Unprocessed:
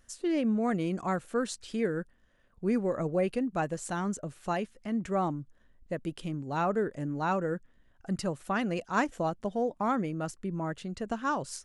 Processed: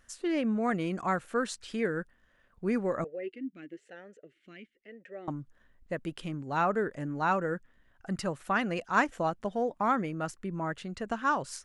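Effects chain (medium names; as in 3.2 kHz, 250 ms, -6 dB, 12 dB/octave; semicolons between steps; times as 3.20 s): peaking EQ 1.6 kHz +6.5 dB 2.1 oct; 3.04–5.28 s: talking filter e-i 1 Hz; trim -2 dB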